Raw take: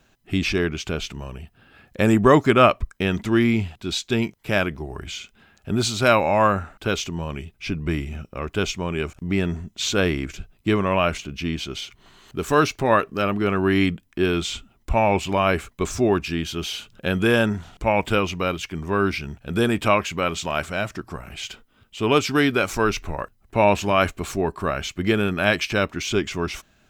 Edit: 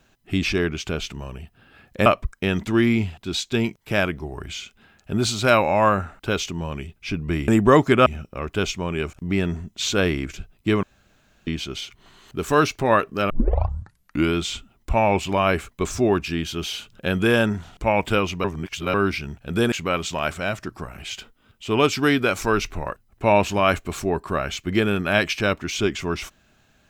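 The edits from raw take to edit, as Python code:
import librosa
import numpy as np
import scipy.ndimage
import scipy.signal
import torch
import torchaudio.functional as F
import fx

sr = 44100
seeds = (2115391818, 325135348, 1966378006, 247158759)

y = fx.edit(x, sr, fx.move(start_s=2.06, length_s=0.58, to_s=8.06),
    fx.room_tone_fill(start_s=10.83, length_s=0.64),
    fx.tape_start(start_s=13.3, length_s=1.06),
    fx.reverse_span(start_s=18.44, length_s=0.5),
    fx.cut(start_s=19.72, length_s=0.32), tone=tone)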